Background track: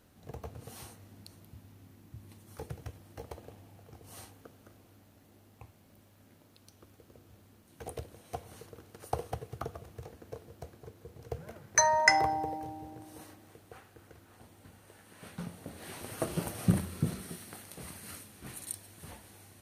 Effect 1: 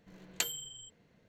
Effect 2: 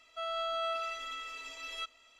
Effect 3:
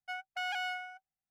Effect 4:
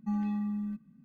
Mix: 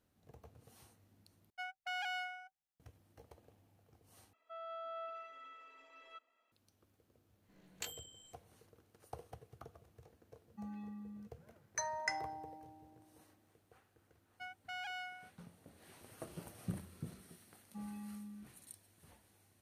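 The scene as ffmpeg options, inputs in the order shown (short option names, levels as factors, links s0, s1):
-filter_complex "[3:a]asplit=2[s0][s1];[4:a]asplit=2[s2][s3];[0:a]volume=0.178[s4];[2:a]acrossover=split=170 2000:gain=0.1 1 0.1[s5][s6][s7];[s5][s6][s7]amix=inputs=3:normalize=0[s8];[1:a]flanger=delay=18.5:depth=2.1:speed=1.7[s9];[s2]highpass=210[s10];[s3]lowshelf=f=130:g=-11.5[s11];[s4]asplit=3[s12][s13][s14];[s12]atrim=end=1.504[s15];[s0]atrim=end=1.3,asetpts=PTS-STARTPTS,volume=0.596[s16];[s13]atrim=start=2.796:end=4.334[s17];[s8]atrim=end=2.19,asetpts=PTS-STARTPTS,volume=0.335[s18];[s14]atrim=start=6.516[s19];[s9]atrim=end=1.28,asetpts=PTS-STARTPTS,volume=0.398,afade=t=in:d=0.004:c=hsin,afade=t=out:st=1.276:d=0.004:c=hsin,adelay=7420[s20];[s10]atrim=end=1.04,asetpts=PTS-STARTPTS,volume=0.237,afade=t=in:d=0.004:c=hsin,afade=t=out:st=1.036:d=0.004:c=hsin,adelay=10510[s21];[s1]atrim=end=1.3,asetpts=PTS-STARTPTS,volume=0.376,afade=t=in:d=0.004:c=hsin,afade=t=out:st=1.296:d=0.004:c=hsin,adelay=14320[s22];[s11]atrim=end=1.04,asetpts=PTS-STARTPTS,volume=0.237,afade=t=in:d=0.004:c=hsin,afade=t=out:st=1.036:d=0.004:c=hsin,adelay=17680[s23];[s15][s16]acrossfade=d=0.004:c1=hsin:c2=hsin[s24];[s24][s17]acrossfade=d=0.004:c1=hsin:c2=hsin[s25];[s25][s18]acrossfade=d=0.004:c1=hsin:c2=hsin[s26];[s26][s19]acrossfade=d=0.004:c1=hsin:c2=hsin[s27];[s27][s20][s21][s22][s23]amix=inputs=5:normalize=0"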